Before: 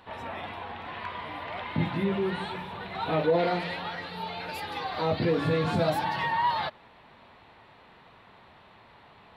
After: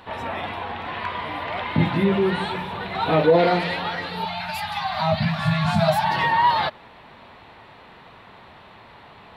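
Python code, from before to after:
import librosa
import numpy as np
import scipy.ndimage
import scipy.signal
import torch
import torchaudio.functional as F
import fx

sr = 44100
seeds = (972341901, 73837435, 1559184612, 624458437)

y = fx.cheby1_bandstop(x, sr, low_hz=220.0, high_hz=620.0, order=5, at=(4.25, 6.11))
y = y * 10.0 ** (8.0 / 20.0)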